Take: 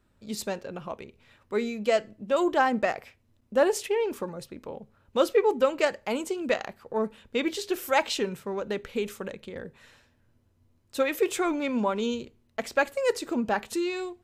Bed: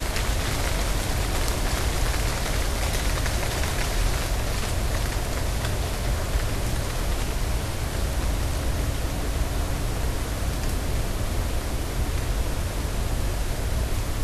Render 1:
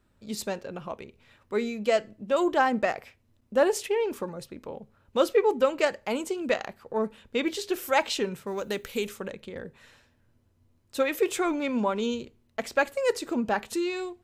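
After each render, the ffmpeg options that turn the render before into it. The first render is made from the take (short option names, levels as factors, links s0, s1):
-filter_complex "[0:a]asplit=3[s0][s1][s2];[s0]afade=t=out:st=8.46:d=0.02[s3];[s1]aemphasis=mode=production:type=75fm,afade=t=in:st=8.46:d=0.02,afade=t=out:st=9.06:d=0.02[s4];[s2]afade=t=in:st=9.06:d=0.02[s5];[s3][s4][s5]amix=inputs=3:normalize=0"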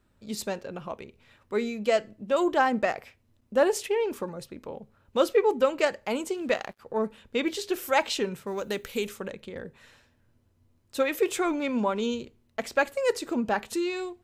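-filter_complex "[0:a]asplit=3[s0][s1][s2];[s0]afade=t=out:st=6.33:d=0.02[s3];[s1]aeval=exprs='sgn(val(0))*max(abs(val(0))-0.00178,0)':c=same,afade=t=in:st=6.33:d=0.02,afade=t=out:st=6.78:d=0.02[s4];[s2]afade=t=in:st=6.78:d=0.02[s5];[s3][s4][s5]amix=inputs=3:normalize=0"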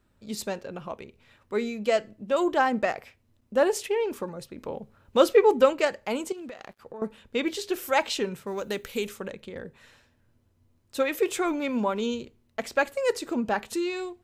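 -filter_complex "[0:a]asettb=1/sr,asplit=3[s0][s1][s2];[s0]atrim=end=6.324[s3];[s1]atrim=start=6.32:end=7.02,asetpts=PTS-STARTPTS,afade=t=in:d=0.004:c=qsin,afade=t=out:st=0.696:d=0.004:c=qsin,acompressor=threshold=0.0158:ratio=20:attack=3.2:release=140:knee=1:detection=peak[s4];[s2]atrim=start=7.016[s5];[s3][s4]acrossfade=d=0.004:c1=hsin:c2=qsin[s6];[s6][s5]acrossfade=d=0.004:c1=qsin:c2=hsin,asettb=1/sr,asplit=3[s7][s8][s9];[s7]atrim=end=11.454[s10];[s8]atrim=start=11.45:end=12.01,asetpts=PTS-STARTPTS,afade=t=in:d=0.004:c=qsin,afade=t=out:st=0.556:d=0.004:c=qsin,equalizer=f=13000:w=6.2:g=13.5[s11];[s9]atrim=start=12.006[s12];[s10][s11]acrossfade=d=0.004:c1=hsin:c2=qsin[s13];[s13][s12]acrossfade=d=0.004:c1=qsin:c2=hsin,asplit=3[s14][s15][s16];[s14]atrim=end=4.582[s17];[s15]atrim=start=4.578:end=5.732,asetpts=PTS-STARTPTS,volume=1.58[s18];[s16]atrim=start=5.728[s19];[s17][s18]acrossfade=d=0.004:c1=hsin:c2=hsin[s20];[s20][s19]acrossfade=d=0.004:c1=hsin:c2=hsin"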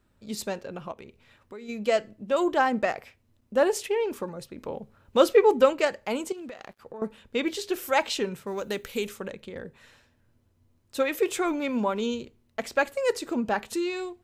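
-filter_complex "[0:a]asplit=3[s0][s1][s2];[s0]afade=t=out:st=0.91:d=0.02[s3];[s1]acompressor=threshold=0.0112:ratio=6:attack=3.2:release=140:knee=1:detection=peak,afade=t=in:st=0.91:d=0.02,afade=t=out:st=1.68:d=0.02[s4];[s2]afade=t=in:st=1.68:d=0.02[s5];[s3][s4][s5]amix=inputs=3:normalize=0"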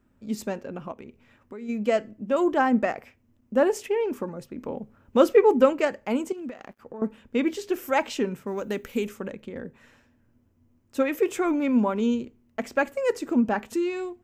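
-af "equalizer=f=250:t=o:w=0.67:g=8,equalizer=f=4000:t=o:w=0.67:g=-9,equalizer=f=10000:t=o:w=0.67:g=-7"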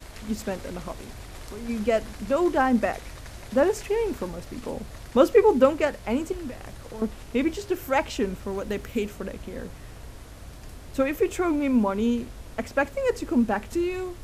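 -filter_complex "[1:a]volume=0.158[s0];[0:a][s0]amix=inputs=2:normalize=0"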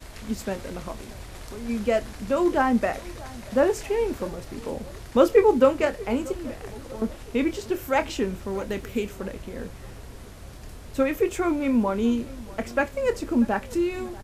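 -filter_complex "[0:a]asplit=2[s0][s1];[s1]adelay=26,volume=0.282[s2];[s0][s2]amix=inputs=2:normalize=0,asplit=2[s3][s4];[s4]adelay=637,lowpass=f=2000:p=1,volume=0.1,asplit=2[s5][s6];[s6]adelay=637,lowpass=f=2000:p=1,volume=0.51,asplit=2[s7][s8];[s8]adelay=637,lowpass=f=2000:p=1,volume=0.51,asplit=2[s9][s10];[s10]adelay=637,lowpass=f=2000:p=1,volume=0.51[s11];[s3][s5][s7][s9][s11]amix=inputs=5:normalize=0"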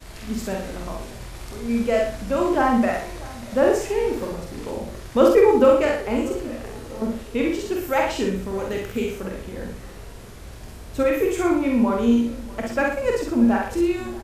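-filter_complex "[0:a]asplit=2[s0][s1];[s1]adelay=47,volume=0.708[s2];[s0][s2]amix=inputs=2:normalize=0,aecho=1:1:64|128|192|256:0.531|0.175|0.0578|0.0191"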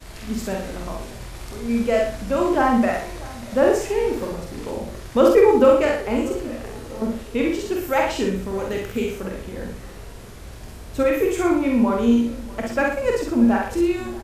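-af "volume=1.12,alimiter=limit=0.708:level=0:latency=1"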